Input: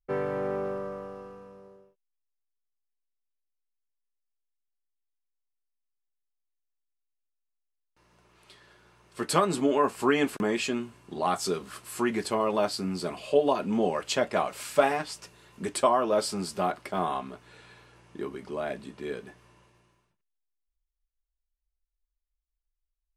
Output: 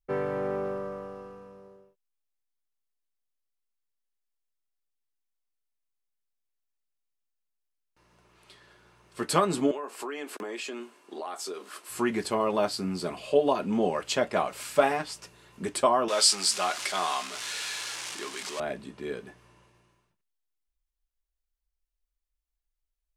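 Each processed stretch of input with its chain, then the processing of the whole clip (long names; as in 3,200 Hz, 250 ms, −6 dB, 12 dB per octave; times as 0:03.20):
0:09.71–0:11.90: high-pass filter 300 Hz 24 dB per octave + downward compressor 5 to 1, threshold −33 dBFS
0:16.08–0:18.60: converter with a step at zero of −36.5 dBFS + meter weighting curve ITU-R 468
whole clip: no processing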